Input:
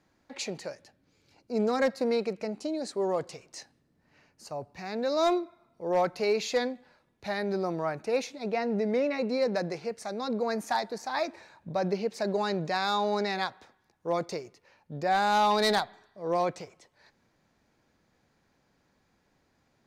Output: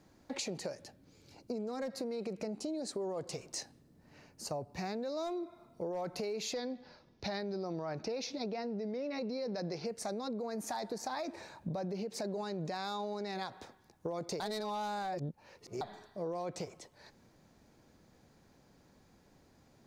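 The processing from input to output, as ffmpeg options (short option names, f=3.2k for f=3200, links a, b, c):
-filter_complex "[0:a]asettb=1/sr,asplit=3[a][b][c];[a]atrim=end=6.534[d];[b]atrim=start=6.53:end=9.86,asetpts=PTS-STARTPTS,afade=t=in:d=0.004:c=qsin,afade=t=out:st=3.326:d=0.004:c=qsin,highshelf=f=6.7k:t=q:w=3:g=-9[e];[c]atrim=start=9.856[f];[d][e]acrossfade=d=0.004:c1=hsin:c2=qsin[g];[g][f]acrossfade=d=0.004:c1=qsin:c2=hsin,asplit=3[h][i][j];[h]atrim=end=14.402[k];[i]atrim=start=14.398:end=15.812,asetpts=PTS-STARTPTS,areverse[l];[j]atrim=start=15.808[m];[k][l]acrossfade=d=0.004:c1=hsin:c2=hsin[n];[n][m]acrossfade=d=0.004:c1=hsin:c2=hsin,equalizer=f=1.9k:w=0.55:g=-7,alimiter=level_in=6dB:limit=-24dB:level=0:latency=1:release=67,volume=-6dB,acompressor=threshold=-43dB:ratio=6,volume=7.5dB"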